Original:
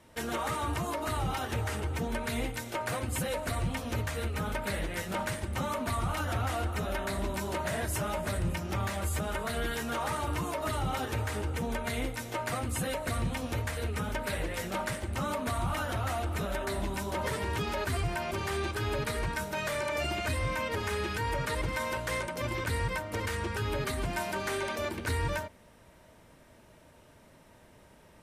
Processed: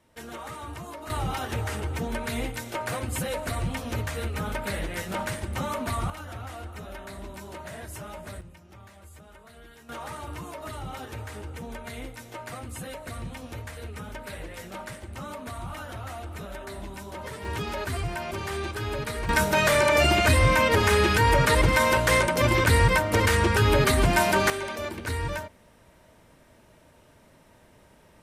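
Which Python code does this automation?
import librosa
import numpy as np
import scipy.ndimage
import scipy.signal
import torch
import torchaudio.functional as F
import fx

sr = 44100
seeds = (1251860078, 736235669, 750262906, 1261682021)

y = fx.gain(x, sr, db=fx.steps((0.0, -6.0), (1.1, 2.5), (6.1, -7.0), (8.41, -17.0), (9.89, -5.0), (17.45, 1.0), (19.29, 12.0), (24.5, 1.0)))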